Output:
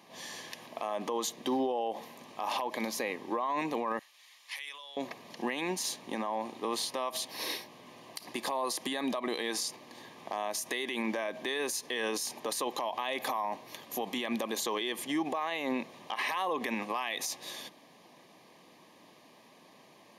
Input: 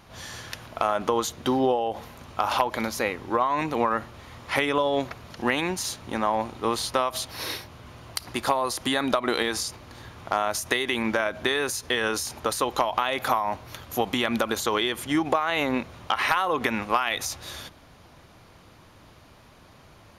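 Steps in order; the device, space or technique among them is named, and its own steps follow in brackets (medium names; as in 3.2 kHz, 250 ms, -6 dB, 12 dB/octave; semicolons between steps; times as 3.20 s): PA system with an anti-feedback notch (high-pass 190 Hz 24 dB/octave; Butterworth band-stop 1.4 kHz, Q 3.5; peak limiter -19.5 dBFS, peak gain reduction 11.5 dB); 3.99–4.97 s: Bessel high-pass 3 kHz, order 2; trim -3.5 dB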